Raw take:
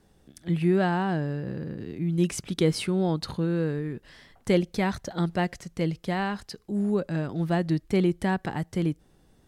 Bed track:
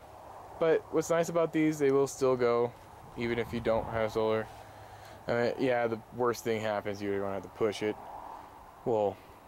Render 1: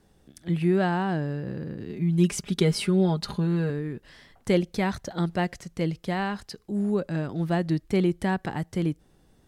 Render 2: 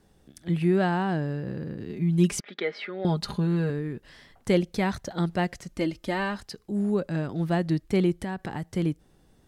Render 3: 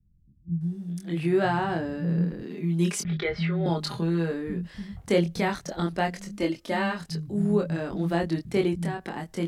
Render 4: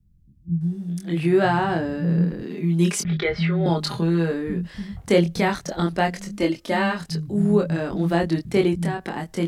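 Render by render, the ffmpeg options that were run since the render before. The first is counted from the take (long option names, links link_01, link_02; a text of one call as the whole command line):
ffmpeg -i in.wav -filter_complex "[0:a]asettb=1/sr,asplit=3[link_01][link_02][link_03];[link_01]atrim=end=1.894[link_04];[link_02]atrim=start=1.89:end=3.7,asetpts=PTS-STARTPTS,afade=type=in:duration=0.004:curve=qsin,afade=type=out:start_time=1.806:duration=0.004:curve=qsin,aecho=1:1:4.9:0.69,atrim=end_sample=79821[link_05];[link_03]atrim=start=3.696[link_06];[link_04][link_05]acrossfade=duration=0.004:curve1=hsin:curve2=qsin[link_07];[link_07][link_06]acrossfade=duration=0.004:curve1=qsin:curve2=hsin" out.wav
ffmpeg -i in.wav -filter_complex "[0:a]asettb=1/sr,asplit=3[link_01][link_02][link_03];[link_01]atrim=end=2.404[link_04];[link_02]atrim=start=2.4:end=3.05,asetpts=PTS-STARTPTS,afade=type=in:duration=0.004:curve=qsin,afade=type=out:start_time=0.646:duration=0.004:curve=qsin,highpass=frequency=350:width=0.5412,highpass=frequency=350:width=1.3066,equalizer=frequency=380:width_type=q:width=4:gain=-9,equalizer=frequency=970:width_type=q:width=4:gain=-7,equalizer=frequency=1900:width_type=q:width=4:gain=8,equalizer=frequency=2800:width_type=q:width=4:gain=-8,lowpass=frequency=3300:width=0.5412,lowpass=frequency=3300:width=1.3066[link_05];[link_03]atrim=start=3.046[link_06];[link_04][link_05]acrossfade=duration=0.004:curve1=hsin:curve2=qsin[link_07];[link_07][link_06]acrossfade=duration=0.004:curve1=qsin:curve2=hsin,asettb=1/sr,asplit=3[link_08][link_09][link_10];[link_08]atrim=end=5.684[link_11];[link_09]atrim=start=5.68:end=6.38,asetpts=PTS-STARTPTS,afade=type=in:duration=0.004:curve=qsin,afade=type=out:start_time=0.696:duration=0.004:curve=qsin,aecho=1:1:3.3:0.65,atrim=end_sample=30870[link_12];[link_10]atrim=start=6.376[link_13];[link_11][link_12]acrossfade=duration=0.004:curve1=hsin:curve2=qsin[link_14];[link_14][link_13]acrossfade=duration=0.004:curve1=qsin:curve2=hsin,asettb=1/sr,asplit=3[link_15][link_16][link_17];[link_15]atrim=end=8.164[link_18];[link_16]atrim=start=8.16:end=8.66,asetpts=PTS-STARTPTS,afade=type=in:duration=0.004:curve=qsin,afade=type=out:start_time=0.496:duration=0.004:curve=qsin,acompressor=threshold=-28dB:ratio=4:attack=3.2:release=140:knee=1:detection=peak[link_19];[link_17]atrim=start=8.656[link_20];[link_18][link_19]acrossfade=duration=0.004:curve1=hsin:curve2=qsin[link_21];[link_21][link_20]acrossfade=duration=0.004:curve1=qsin:curve2=hsin" out.wav
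ffmpeg -i in.wav -filter_complex "[0:a]asplit=2[link_01][link_02];[link_02]adelay=24,volume=-3.5dB[link_03];[link_01][link_03]amix=inputs=2:normalize=0,acrossover=split=170[link_04][link_05];[link_05]adelay=610[link_06];[link_04][link_06]amix=inputs=2:normalize=0" out.wav
ffmpeg -i in.wav -af "volume=5dB" out.wav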